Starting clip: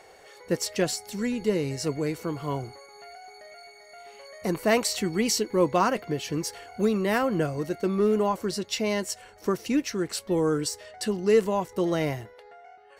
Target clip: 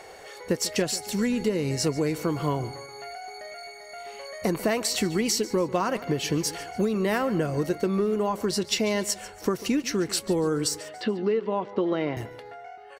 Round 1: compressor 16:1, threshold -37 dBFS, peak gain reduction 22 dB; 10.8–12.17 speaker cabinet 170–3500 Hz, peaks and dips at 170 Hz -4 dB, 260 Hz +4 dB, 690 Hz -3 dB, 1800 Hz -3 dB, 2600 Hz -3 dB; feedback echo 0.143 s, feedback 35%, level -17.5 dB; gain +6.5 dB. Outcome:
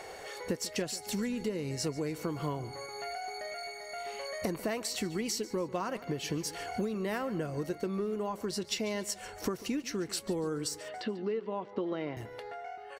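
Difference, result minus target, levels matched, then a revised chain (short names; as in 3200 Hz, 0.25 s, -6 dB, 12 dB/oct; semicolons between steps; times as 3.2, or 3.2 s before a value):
compressor: peak gain reduction +9 dB
compressor 16:1, threshold -27.5 dBFS, peak gain reduction 13 dB; 10.8–12.17 speaker cabinet 170–3500 Hz, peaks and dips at 170 Hz -4 dB, 260 Hz +4 dB, 690 Hz -3 dB, 1800 Hz -3 dB, 2600 Hz -3 dB; feedback echo 0.143 s, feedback 35%, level -17.5 dB; gain +6.5 dB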